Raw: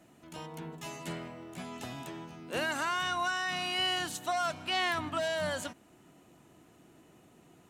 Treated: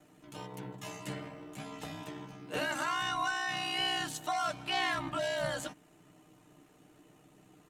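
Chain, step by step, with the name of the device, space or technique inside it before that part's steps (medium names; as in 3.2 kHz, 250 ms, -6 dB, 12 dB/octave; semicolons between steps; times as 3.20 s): ring-modulated robot voice (ring modulator 32 Hz; comb 6.6 ms, depth 68%)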